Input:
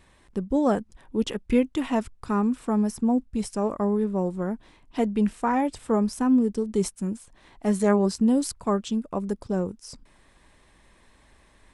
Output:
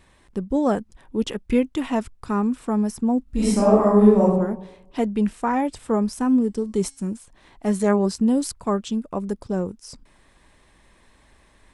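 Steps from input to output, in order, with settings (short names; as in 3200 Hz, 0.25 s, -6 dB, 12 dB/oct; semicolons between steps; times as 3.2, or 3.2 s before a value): 3.23–4.23 reverb throw, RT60 0.87 s, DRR -8.5 dB; 6.14–7.14 de-hum 273.5 Hz, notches 34; gain +1.5 dB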